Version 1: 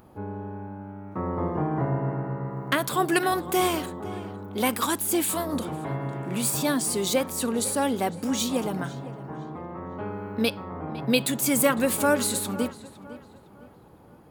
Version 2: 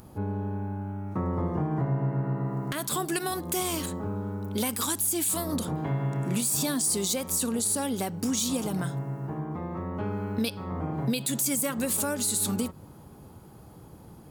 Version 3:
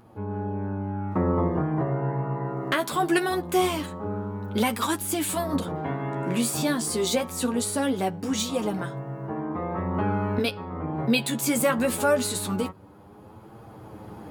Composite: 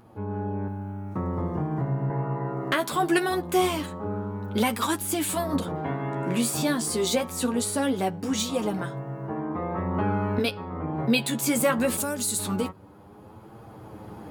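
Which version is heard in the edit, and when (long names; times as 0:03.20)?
3
0:00.68–0:02.10: punch in from 2
0:11.97–0:12.39: punch in from 2
not used: 1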